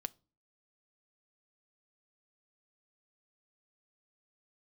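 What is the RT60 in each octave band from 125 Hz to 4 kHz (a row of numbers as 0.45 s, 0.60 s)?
0.50 s, 0.50 s, 0.35 s, 0.30 s, 0.25 s, 0.25 s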